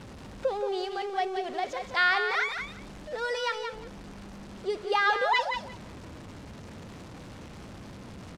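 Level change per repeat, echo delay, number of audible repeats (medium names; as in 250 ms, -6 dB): -16.0 dB, 176 ms, 2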